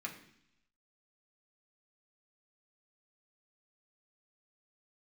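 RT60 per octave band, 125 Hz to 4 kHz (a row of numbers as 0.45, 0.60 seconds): 0.95, 0.90, 0.70, 0.70, 0.90, 1.0 seconds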